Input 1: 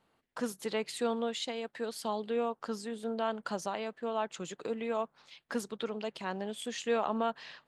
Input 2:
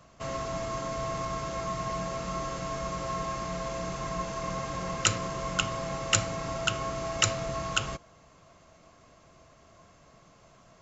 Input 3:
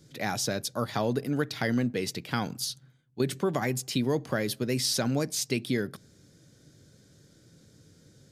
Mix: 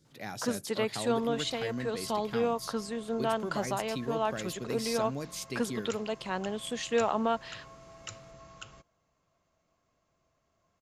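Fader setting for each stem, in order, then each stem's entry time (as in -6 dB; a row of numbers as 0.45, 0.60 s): +3.0, -18.5, -9.5 dB; 0.05, 0.85, 0.00 s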